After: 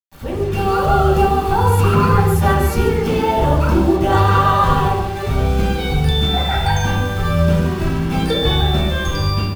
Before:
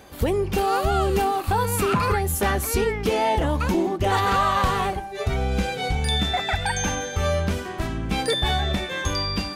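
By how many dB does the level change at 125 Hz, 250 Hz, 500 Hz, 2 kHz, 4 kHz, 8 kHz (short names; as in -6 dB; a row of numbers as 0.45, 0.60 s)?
+10.5, +8.0, +6.0, +3.5, +4.0, -2.5 dB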